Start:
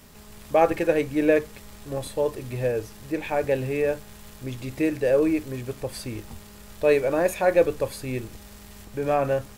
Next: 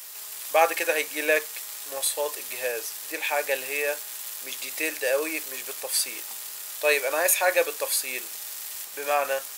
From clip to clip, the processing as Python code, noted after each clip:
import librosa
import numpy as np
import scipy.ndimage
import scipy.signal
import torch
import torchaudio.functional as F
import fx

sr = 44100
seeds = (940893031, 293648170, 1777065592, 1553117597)

y = scipy.signal.sosfilt(scipy.signal.butter(2, 560.0, 'highpass', fs=sr, output='sos'), x)
y = fx.tilt_eq(y, sr, slope=4.0)
y = y * 10.0 ** (2.5 / 20.0)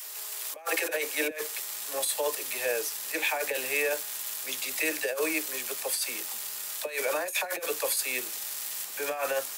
y = fx.filter_sweep_highpass(x, sr, from_hz=370.0, to_hz=140.0, start_s=1.36, end_s=2.02, q=1.4)
y = fx.over_compress(y, sr, threshold_db=-26.0, ratio=-0.5)
y = fx.dispersion(y, sr, late='lows', ms=44.0, hz=400.0)
y = y * 10.0 ** (-2.0 / 20.0)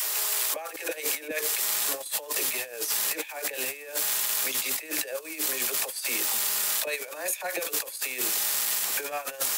y = fx.over_compress(x, sr, threshold_db=-36.0, ratio=-0.5)
y = 10.0 ** (-22.5 / 20.0) * np.tanh(y / 10.0 ** (-22.5 / 20.0))
y = fx.band_squash(y, sr, depth_pct=40)
y = y * 10.0 ** (6.5 / 20.0)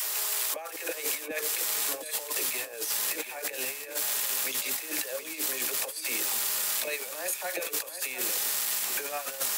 y = x + 10.0 ** (-10.5 / 20.0) * np.pad(x, (int(721 * sr / 1000.0), 0))[:len(x)]
y = y * 10.0 ** (-2.5 / 20.0)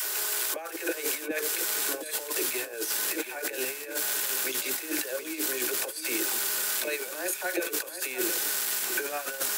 y = fx.small_body(x, sr, hz=(350.0, 1500.0), ring_ms=40, db=13)